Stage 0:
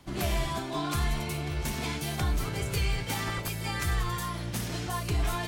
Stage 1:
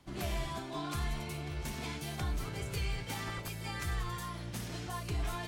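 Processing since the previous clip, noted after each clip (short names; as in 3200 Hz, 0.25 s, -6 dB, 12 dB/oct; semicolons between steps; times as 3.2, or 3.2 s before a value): high shelf 12000 Hz -4.5 dB; gain -7 dB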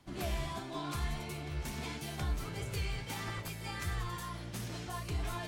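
flange 1.5 Hz, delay 7.8 ms, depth 8.9 ms, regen +63%; gain +3.5 dB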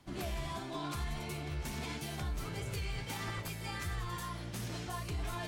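limiter -31 dBFS, peak gain reduction 5.5 dB; gain +1 dB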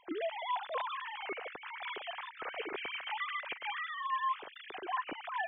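sine-wave speech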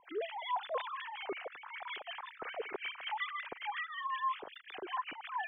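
harmonic tremolo 5.4 Hz, depth 100%, crossover 1300 Hz; gain +3.5 dB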